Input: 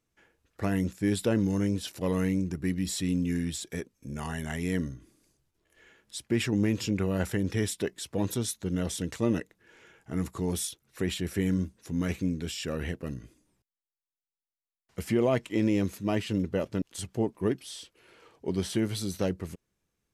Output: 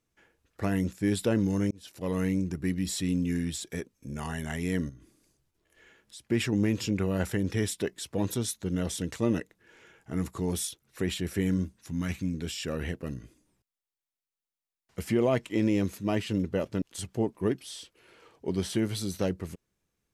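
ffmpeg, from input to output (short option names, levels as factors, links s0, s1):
-filter_complex "[0:a]asettb=1/sr,asplit=3[s0][s1][s2];[s0]atrim=end=4.894[s3];[s1]atrim=start=4.89:end=6.28,asetpts=PTS-STARTPTS,afade=t=in:d=0.004:c=qsin,afade=t=out:st=1.386:d=0.004:c=qsin,acompressor=threshold=0.00355:ratio=2:attack=3.2:release=140:knee=1:detection=peak[s4];[s2]atrim=start=6.276[s5];[s3][s4]acrossfade=d=0.004:c1=hsin:c2=qsin[s6];[s6][s5]acrossfade=d=0.004:c1=qsin:c2=hsin,asettb=1/sr,asplit=3[s7][s8][s9];[s7]atrim=end=11.764[s10];[s8]atrim=start=11.76:end=12.34,asetpts=PTS-STARTPTS,afade=t=in:d=0.004:c=qsin,afade=t=out:st=0.576:d=0.004:c=qsin,equalizer=f=440:w=1.5:g=-10.5[s11];[s9]atrim=start=12.336[s12];[s10][s11]acrossfade=d=0.004:c1=hsin:c2=qsin[s13];[s13][s12]acrossfade=d=0.004:c1=qsin:c2=hsin,asplit=2[s14][s15];[s14]atrim=end=1.71,asetpts=PTS-STARTPTS,afade=t=out:st=1.706:d=0.004:c=hsin[s16];[s15]atrim=start=1.71,asetpts=PTS-STARTPTS,afade=t=in:d=0.71:c=qsin[s17];[s16][s17]concat=n=2:v=0:a=1"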